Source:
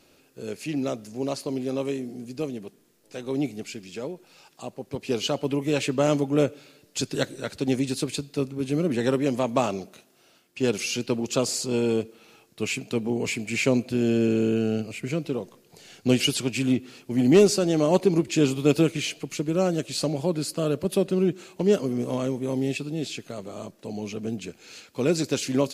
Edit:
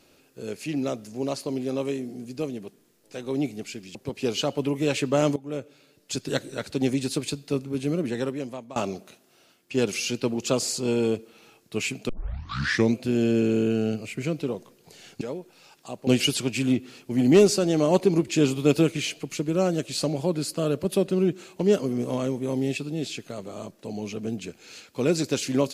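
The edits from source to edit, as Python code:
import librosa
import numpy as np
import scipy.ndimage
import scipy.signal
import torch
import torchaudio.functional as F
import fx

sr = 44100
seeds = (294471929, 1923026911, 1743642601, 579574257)

y = fx.edit(x, sr, fx.move(start_s=3.95, length_s=0.86, to_s=16.07),
    fx.fade_in_from(start_s=6.22, length_s=1.11, floor_db=-16.5),
    fx.fade_out_to(start_s=8.61, length_s=1.01, floor_db=-22.0),
    fx.tape_start(start_s=12.95, length_s=0.86), tone=tone)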